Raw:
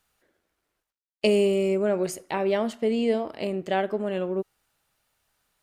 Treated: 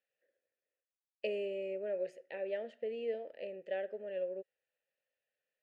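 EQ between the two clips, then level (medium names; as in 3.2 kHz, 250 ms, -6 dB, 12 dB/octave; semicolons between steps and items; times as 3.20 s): vowel filter e; peaking EQ 330 Hz -3.5 dB 0.41 oct; treble shelf 7.7 kHz -5.5 dB; -3.0 dB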